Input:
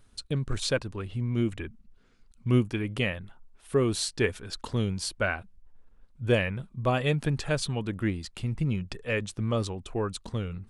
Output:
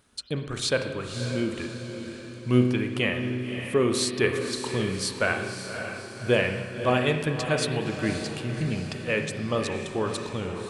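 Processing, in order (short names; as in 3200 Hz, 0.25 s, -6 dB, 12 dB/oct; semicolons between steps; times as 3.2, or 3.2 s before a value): HPF 230 Hz 6 dB/oct; diffused feedback echo 0.564 s, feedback 50%, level -8 dB; spring tank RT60 1.2 s, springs 32/56 ms, chirp 65 ms, DRR 6 dB; gain +3 dB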